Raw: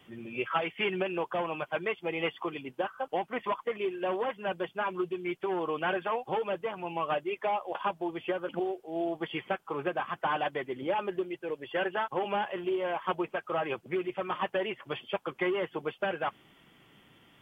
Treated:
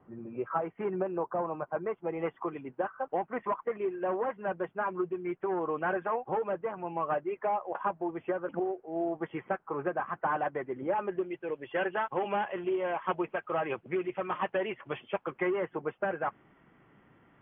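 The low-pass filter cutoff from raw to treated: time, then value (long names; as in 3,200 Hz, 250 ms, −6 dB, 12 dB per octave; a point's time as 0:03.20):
low-pass filter 24 dB per octave
0:01.75 1,300 Hz
0:02.55 1,800 Hz
0:10.87 1,800 Hz
0:11.39 2,600 Hz
0:15.04 2,600 Hz
0:15.83 1,900 Hz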